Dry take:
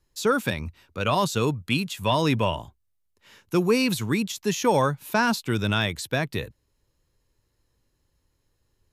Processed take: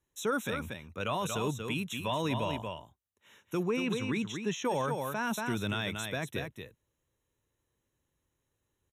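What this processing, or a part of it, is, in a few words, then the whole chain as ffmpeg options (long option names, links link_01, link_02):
PA system with an anti-feedback notch: -filter_complex "[0:a]asettb=1/sr,asplit=3[link_01][link_02][link_03];[link_01]atrim=end=3.634[link_04];[link_02]atrim=start=3.63:end=4.65,asetpts=PTS-STARTPTS,afade=type=in:duration=0.004:curve=qsin,afade=type=out:start_time=1.016:duration=0.004:curve=qsin,lowpass=5300[link_05];[link_03]atrim=start=4.646[link_06];[link_04][link_05]acrossfade=duration=0.004:curve1=hsin:curve2=qsin[link_07];[link_07][link_06]acrossfade=duration=0.004:curve1=qsin:curve2=hsin,highpass=frequency=110:poles=1,asuperstop=centerf=4700:order=20:qfactor=3.3,aecho=1:1:233:0.398,alimiter=limit=-16dB:level=0:latency=1:release=14,volume=-6.5dB"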